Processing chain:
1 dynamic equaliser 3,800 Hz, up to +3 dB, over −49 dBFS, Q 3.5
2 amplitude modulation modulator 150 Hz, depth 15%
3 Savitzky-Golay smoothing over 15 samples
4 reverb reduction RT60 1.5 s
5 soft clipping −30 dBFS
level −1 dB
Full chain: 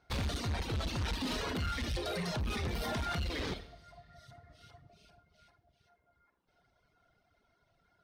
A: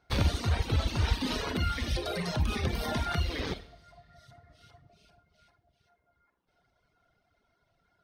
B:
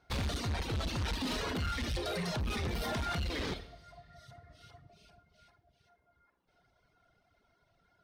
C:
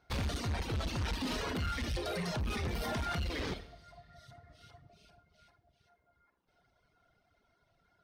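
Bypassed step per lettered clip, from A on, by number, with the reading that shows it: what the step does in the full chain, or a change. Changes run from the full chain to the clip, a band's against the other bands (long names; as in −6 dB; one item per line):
5, distortion level −8 dB
2, change in momentary loudness spread +16 LU
1, 4 kHz band −1.5 dB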